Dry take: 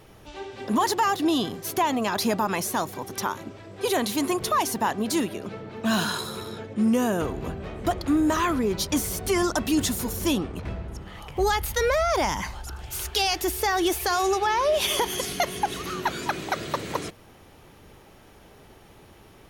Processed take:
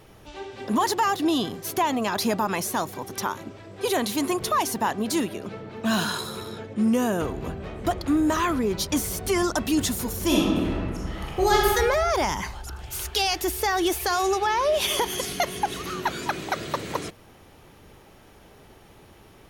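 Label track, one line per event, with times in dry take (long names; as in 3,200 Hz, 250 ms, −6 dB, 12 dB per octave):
10.260000	11.690000	thrown reverb, RT60 1.6 s, DRR −4 dB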